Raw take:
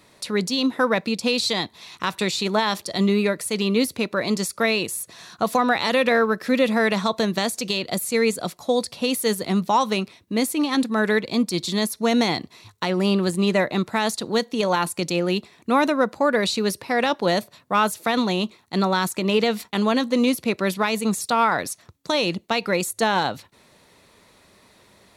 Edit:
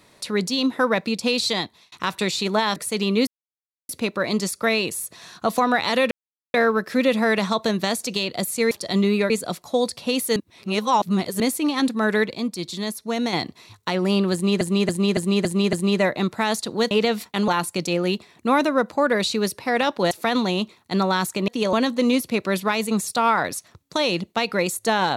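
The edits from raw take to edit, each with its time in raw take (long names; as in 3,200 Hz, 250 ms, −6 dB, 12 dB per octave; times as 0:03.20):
0:01.59–0:01.92: fade out
0:02.76–0:03.35: move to 0:08.25
0:03.86: splice in silence 0.62 s
0:06.08: splice in silence 0.43 s
0:09.31–0:10.35: reverse
0:11.29–0:12.28: clip gain −5 dB
0:13.28–0:13.56: repeat, 6 plays
0:14.46–0:14.71: swap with 0:19.30–0:19.87
0:17.34–0:17.93: remove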